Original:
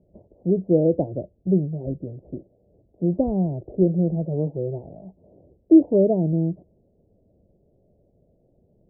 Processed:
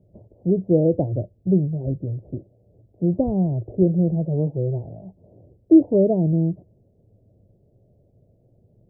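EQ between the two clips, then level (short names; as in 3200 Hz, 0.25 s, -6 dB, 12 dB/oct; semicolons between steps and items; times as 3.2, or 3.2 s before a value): bell 110 Hz +12 dB 0.58 oct; 0.0 dB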